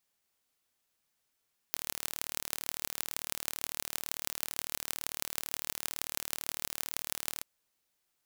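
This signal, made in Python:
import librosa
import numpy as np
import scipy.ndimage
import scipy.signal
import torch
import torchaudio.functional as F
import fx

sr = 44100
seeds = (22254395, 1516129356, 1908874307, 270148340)

y = fx.impulse_train(sr, length_s=5.7, per_s=37.9, accent_every=6, level_db=-4.0)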